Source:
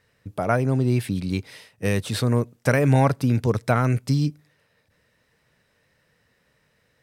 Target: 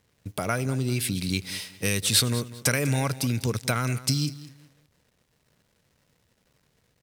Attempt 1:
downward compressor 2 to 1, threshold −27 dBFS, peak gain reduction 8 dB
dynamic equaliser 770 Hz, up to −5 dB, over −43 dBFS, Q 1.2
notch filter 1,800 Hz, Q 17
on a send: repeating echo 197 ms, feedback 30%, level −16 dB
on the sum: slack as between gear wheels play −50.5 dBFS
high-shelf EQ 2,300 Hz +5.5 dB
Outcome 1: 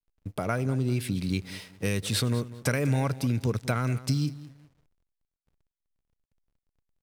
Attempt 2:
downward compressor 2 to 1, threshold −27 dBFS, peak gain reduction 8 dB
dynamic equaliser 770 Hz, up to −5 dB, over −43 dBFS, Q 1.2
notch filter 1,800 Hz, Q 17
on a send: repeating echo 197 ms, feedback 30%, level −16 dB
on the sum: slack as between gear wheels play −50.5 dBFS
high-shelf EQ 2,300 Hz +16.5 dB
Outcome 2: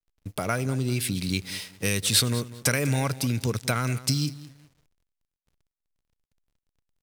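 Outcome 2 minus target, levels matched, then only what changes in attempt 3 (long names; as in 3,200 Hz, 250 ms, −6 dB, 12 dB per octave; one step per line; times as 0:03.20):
slack as between gear wheels: distortion +6 dB
change: slack as between gear wheels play −57 dBFS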